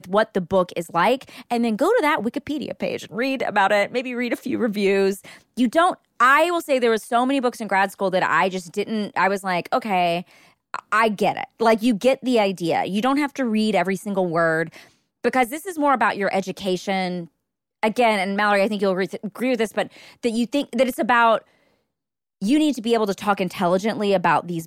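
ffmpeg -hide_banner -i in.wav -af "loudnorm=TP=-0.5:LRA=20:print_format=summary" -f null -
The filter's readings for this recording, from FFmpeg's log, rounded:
Input Integrated:    -21.2 LUFS
Input True Peak:      -5.1 dBTP
Input LRA:             2.4 LU
Input Threshold:     -31.5 LUFS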